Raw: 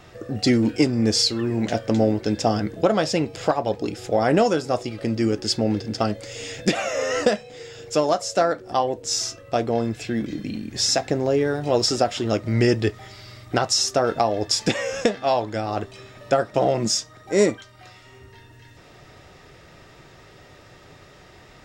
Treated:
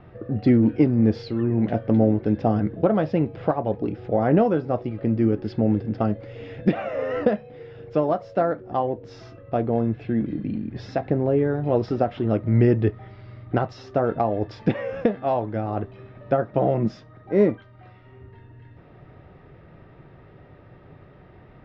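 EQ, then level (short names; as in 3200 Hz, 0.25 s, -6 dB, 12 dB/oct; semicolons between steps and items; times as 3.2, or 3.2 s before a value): air absorption 300 m; tape spacing loss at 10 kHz 26 dB; bell 150 Hz +4.5 dB 1.9 oct; 0.0 dB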